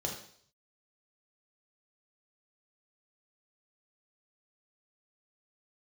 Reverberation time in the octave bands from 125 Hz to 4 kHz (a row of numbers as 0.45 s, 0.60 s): 0.80 s, 0.55 s, 0.60 s, 0.55 s, 0.55 s, 0.65 s